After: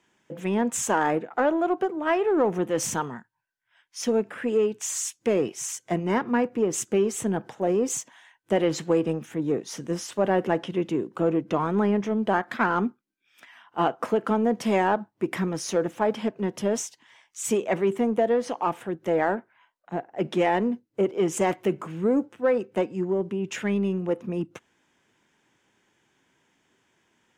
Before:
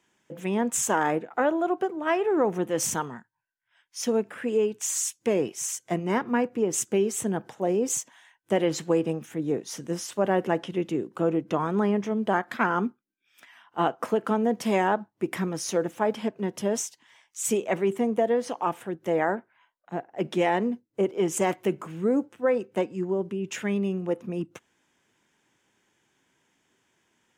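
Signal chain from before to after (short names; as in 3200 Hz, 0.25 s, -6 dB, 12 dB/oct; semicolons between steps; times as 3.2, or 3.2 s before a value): in parallel at -8.5 dB: soft clip -27 dBFS, distortion -7 dB; on the sum: high shelf 7300 Hz -7.5 dB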